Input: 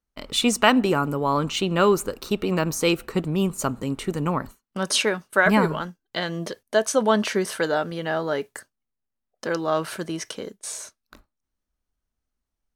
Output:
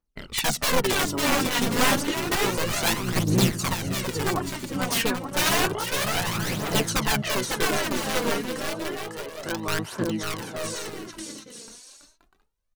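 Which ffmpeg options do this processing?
ffmpeg -i in.wav -filter_complex "[0:a]aeval=exprs='(mod(5.31*val(0)+1,2)-1)/5.31':channel_layout=same,aecho=1:1:550|880|1078|1197|1268:0.631|0.398|0.251|0.158|0.1,asplit=2[link_01][link_02];[link_02]asetrate=29433,aresample=44100,atempo=1.49831,volume=-2dB[link_03];[link_01][link_03]amix=inputs=2:normalize=0,aphaser=in_gain=1:out_gain=1:delay=4.4:decay=0.55:speed=0.3:type=triangular,volume=-6dB" out.wav

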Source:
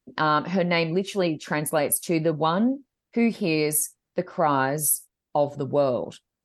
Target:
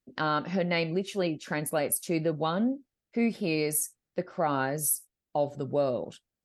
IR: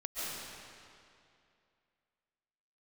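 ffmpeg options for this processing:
-af "equalizer=frequency=1000:width=6.5:gain=-8,volume=-5dB"

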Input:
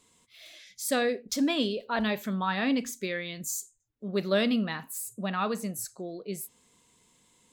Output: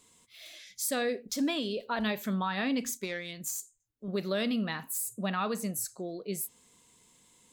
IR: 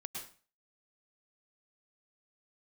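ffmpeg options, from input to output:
-filter_complex "[0:a]highshelf=frequency=6600:gain=5,alimiter=limit=-22dB:level=0:latency=1:release=184,asettb=1/sr,asplit=3[link_01][link_02][link_03];[link_01]atrim=end=2.974[link_04];[link_02]atrim=start=2.97:end=4.08,asetpts=PTS-STARTPTS,afade=type=in:duration=0.004:curve=qsin,afade=type=out:start_time=1.106:duration=0.004:curve=qsin,aeval=exprs='0.211*(cos(1*acos(clip(val(0)/0.211,-1,1)))-cos(1*PI/2))+0.0119*(cos(7*acos(clip(val(0)/0.211,-1,1)))-cos(7*PI/2))':channel_layout=same[link_05];[link_03]atrim=start=4.076[link_06];[link_04][link_05]acrossfade=duration=0.004:curve1=hsin:curve2=qsin[link_07];[link_07][link_06]acrossfade=duration=0.004:curve1=qsin:curve2=hsin"

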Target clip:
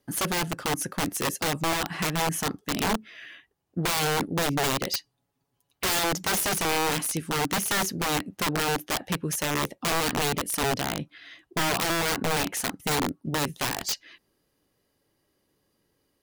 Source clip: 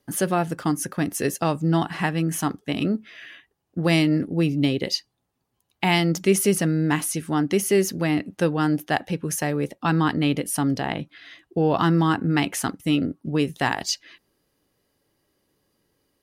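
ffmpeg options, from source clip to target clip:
ffmpeg -i in.wav -filter_complex "[0:a]asettb=1/sr,asplit=3[link_01][link_02][link_03];[link_01]atrim=end=4.944[link_04];[link_02]atrim=start=4.94:end=5.99,asetpts=PTS-STARTPTS,afade=type=in:duration=0.004:curve=qsin,afade=type=out:start_time=1.046:duration=0.004:curve=qsin,aecho=1:1:7.1:0.57,atrim=end_sample=46305[link_05];[link_03]atrim=start=5.986[link_06];[link_04][link_05]acrossfade=duration=0.004:curve1=hsin:curve2=qsin[link_07];[link_07][link_06]acrossfade=duration=0.004:curve1=qsin:curve2=hsin,aeval=exprs='(mod(7.94*val(0)+1,2)-1)/7.94':channel_layout=same,volume=-2dB" out.wav

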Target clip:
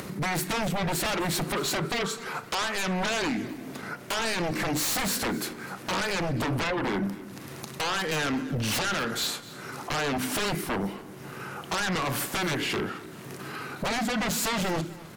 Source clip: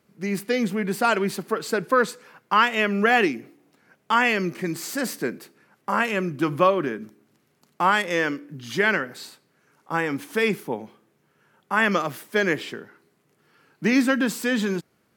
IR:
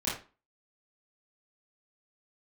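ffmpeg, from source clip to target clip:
-filter_complex "[0:a]asplit=2[link_01][link_02];[1:a]atrim=start_sample=2205,asetrate=43218,aresample=44100[link_03];[link_02][link_03]afir=irnorm=-1:irlink=0,volume=-21dB[link_04];[link_01][link_04]amix=inputs=2:normalize=0,acompressor=threshold=-30dB:ratio=10,asetrate=40440,aresample=44100,atempo=1.09051,acompressor=mode=upward:threshold=-42dB:ratio=2.5,aeval=exprs='0.141*sin(PI/2*7.94*val(0)/0.141)':channel_layout=same,aecho=1:1:256|512|768:0.119|0.0404|0.0137,volume=-7.5dB"

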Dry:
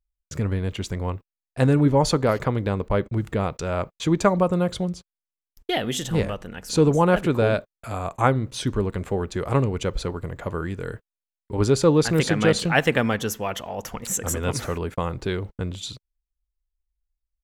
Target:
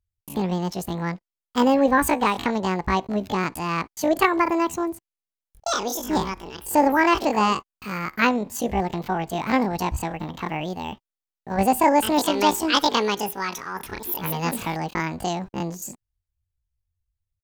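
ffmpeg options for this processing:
ffmpeg -i in.wav -af "asetrate=83250,aresample=44100,atempo=0.529732" out.wav

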